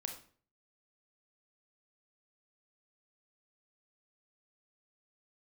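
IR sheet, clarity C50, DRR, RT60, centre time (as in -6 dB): 7.5 dB, 3.5 dB, 0.45 s, 19 ms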